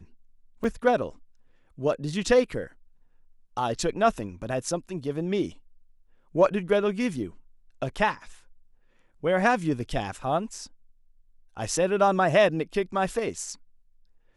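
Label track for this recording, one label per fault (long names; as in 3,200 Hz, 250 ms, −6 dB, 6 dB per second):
0.640000	0.640000	drop-out 4.1 ms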